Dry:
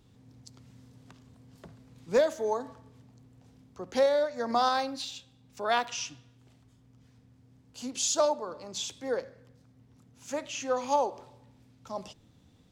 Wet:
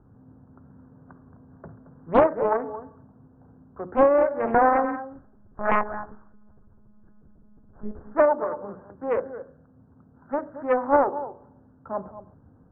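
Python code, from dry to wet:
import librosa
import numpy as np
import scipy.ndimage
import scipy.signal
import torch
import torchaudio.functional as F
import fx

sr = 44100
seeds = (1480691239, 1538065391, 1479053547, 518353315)

y = fx.lpc_monotone(x, sr, seeds[0], pitch_hz=210.0, order=8, at=(5.11, 8.05))
y = scipy.signal.sosfilt(scipy.signal.butter(16, 1600.0, 'lowpass', fs=sr, output='sos'), y)
y = fx.hum_notches(y, sr, base_hz=60, count=8)
y = y + 10.0 ** (-13.0 / 20.0) * np.pad(y, (int(223 * sr / 1000.0), 0))[:len(y)]
y = fx.doppler_dist(y, sr, depth_ms=0.73)
y = y * librosa.db_to_amplitude(7.0)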